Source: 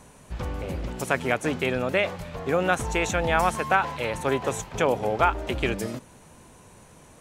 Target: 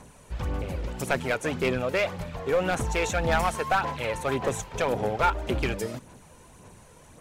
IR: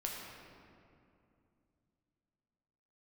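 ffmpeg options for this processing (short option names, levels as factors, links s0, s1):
-af "aphaser=in_gain=1:out_gain=1:delay=2.2:decay=0.41:speed=1.8:type=sinusoidal,aeval=exprs='clip(val(0),-1,0.133)':c=same,volume=0.794"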